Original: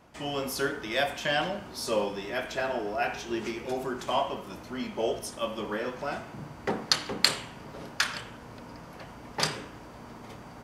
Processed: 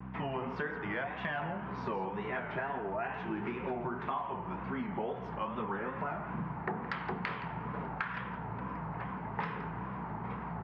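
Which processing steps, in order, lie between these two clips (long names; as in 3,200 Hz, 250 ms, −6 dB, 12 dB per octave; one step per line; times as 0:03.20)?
mains hum 60 Hz, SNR 13 dB
loudspeaker in its box 110–2,100 Hz, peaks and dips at 170 Hz +6 dB, 310 Hz −8 dB, 570 Hz −9 dB, 950 Hz +6 dB
tape wow and flutter 130 cents
in parallel at +1 dB: brickwall limiter −24 dBFS, peak gain reduction 11 dB
on the sum: downward compressor, threshold −32 dBFS, peak gain reduction 14 dB
on a send: single-tap delay 169 ms −13.5 dB
on the sum: level −1.5 dB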